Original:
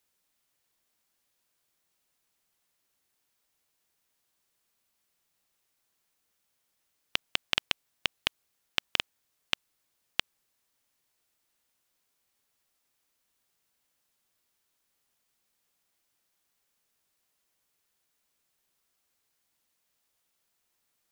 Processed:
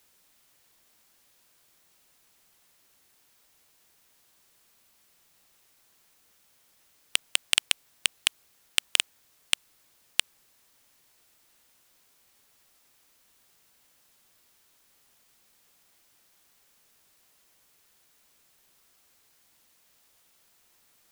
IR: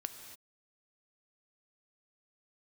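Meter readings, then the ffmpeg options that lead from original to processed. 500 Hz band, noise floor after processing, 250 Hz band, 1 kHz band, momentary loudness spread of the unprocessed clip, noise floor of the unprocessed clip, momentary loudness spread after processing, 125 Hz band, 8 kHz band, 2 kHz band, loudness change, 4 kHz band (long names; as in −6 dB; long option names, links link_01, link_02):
−3.5 dB, −65 dBFS, −4.0 dB, −2.0 dB, 5 LU, −78 dBFS, 5 LU, −4.0 dB, +16.5 dB, +3.5 dB, +5.5 dB, +5.0 dB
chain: -af "aeval=exprs='0.668*sin(PI/2*2.82*val(0)/0.668)':channel_layout=same"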